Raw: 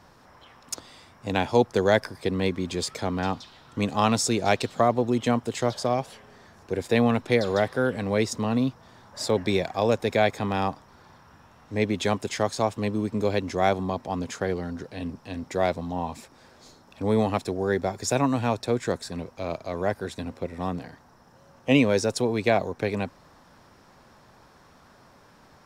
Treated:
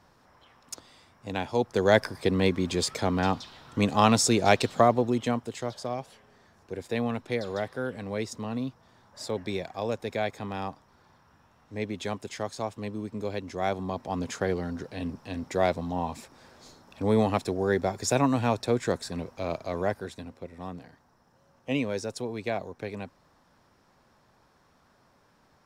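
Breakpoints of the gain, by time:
1.57 s -6.5 dB
2 s +1.5 dB
4.79 s +1.5 dB
5.64 s -8 dB
13.48 s -8 dB
14.28 s -0.5 dB
19.78 s -0.5 dB
20.33 s -9 dB

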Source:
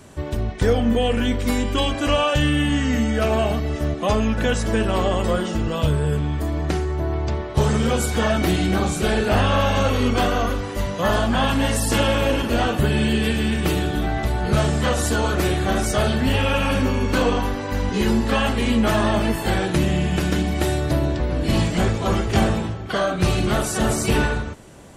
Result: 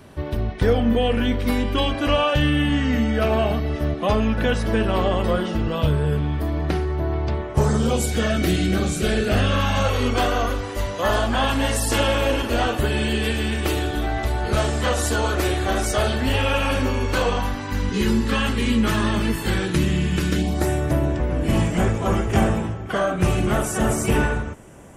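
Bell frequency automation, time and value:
bell -13 dB 0.57 oct
7.28 s 7300 Hz
8.2 s 920 Hz
9.5 s 920 Hz
10.04 s 170 Hz
16.97 s 170 Hz
17.85 s 690 Hz
20.3 s 690 Hz
20.7 s 4200 Hz

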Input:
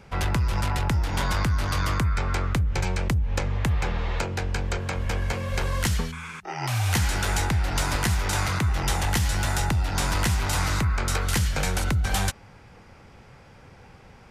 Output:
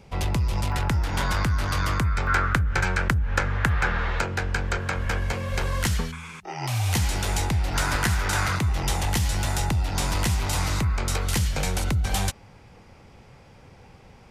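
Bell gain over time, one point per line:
bell 1500 Hz 0.71 oct
-9.5 dB
from 0.72 s +2 dB
from 2.27 s +14 dB
from 4.1 s +7.5 dB
from 5.19 s +1 dB
from 6.16 s -6.5 dB
from 7.74 s +5 dB
from 8.56 s -5 dB

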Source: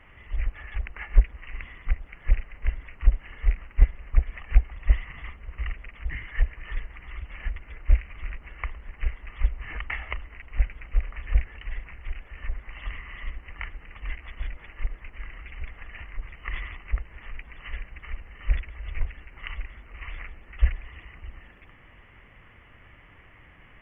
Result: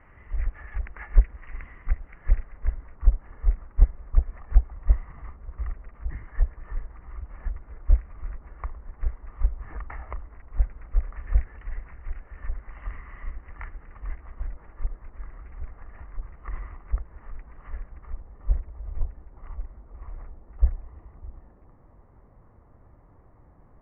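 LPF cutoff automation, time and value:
LPF 24 dB/oct
2.14 s 1800 Hz
2.93 s 1300 Hz
10.65 s 1300 Hz
11.25 s 1600 Hz
13.73 s 1600 Hz
14.33 s 1300 Hz
17.85 s 1300 Hz
18.34 s 1000 Hz

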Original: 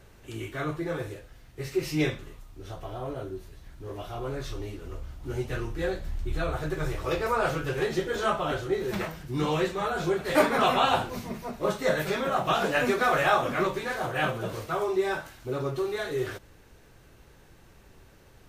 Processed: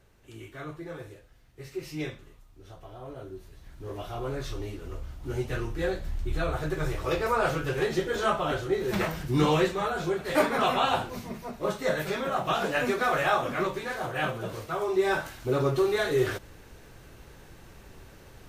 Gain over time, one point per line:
2.97 s -8 dB
3.85 s +0.5 dB
8.83 s +0.5 dB
9.2 s +7 dB
10.05 s -2 dB
14.79 s -2 dB
15.22 s +5 dB

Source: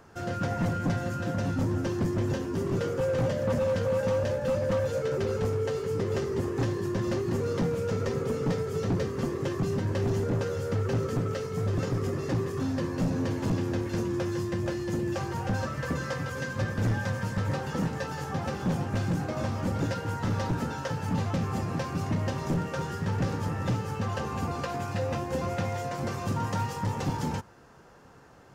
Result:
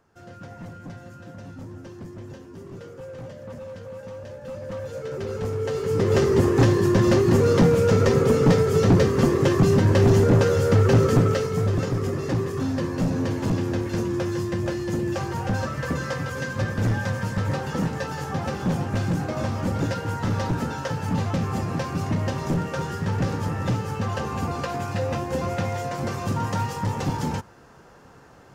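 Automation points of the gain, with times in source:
4.17 s -11 dB
5.58 s +1.5 dB
6.23 s +11 dB
11.19 s +11 dB
11.86 s +4 dB

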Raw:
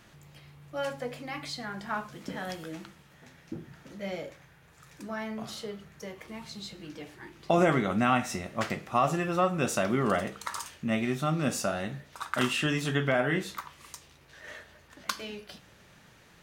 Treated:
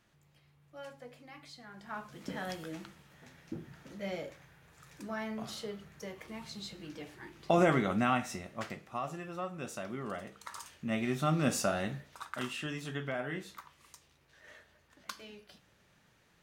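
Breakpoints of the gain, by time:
1.65 s -14 dB
2.29 s -2.5 dB
7.87 s -2.5 dB
9.09 s -13 dB
10.2 s -13 dB
11.3 s -1 dB
11.91 s -1 dB
12.39 s -10.5 dB

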